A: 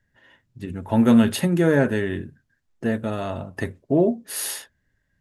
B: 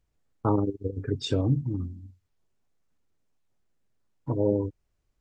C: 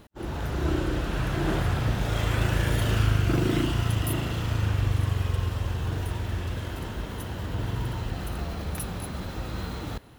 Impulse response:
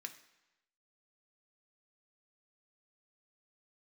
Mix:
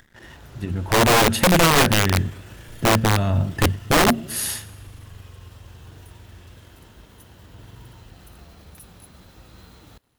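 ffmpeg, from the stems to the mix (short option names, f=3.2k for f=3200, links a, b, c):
-filter_complex "[0:a]asubboost=boost=8:cutoff=150,acompressor=mode=upward:threshold=-35dB:ratio=2.5,aeval=exprs='sgn(val(0))*max(abs(val(0))-0.00316,0)':c=same,volume=3dB,asplit=2[a][b];[b]volume=-21dB[c];[2:a]highshelf=f=3.4k:g=8.5,aeval=exprs='sgn(val(0))*max(abs(val(0))-0.00188,0)':c=same,volume=-14dB,alimiter=level_in=9.5dB:limit=-24dB:level=0:latency=1:release=21,volume=-9.5dB,volume=0dB[d];[c]aecho=0:1:117|234|351|468|585|702|819|936:1|0.52|0.27|0.141|0.0731|0.038|0.0198|0.0103[e];[a][d][e]amix=inputs=3:normalize=0,aeval=exprs='(mod(3.16*val(0)+1,2)-1)/3.16':c=same"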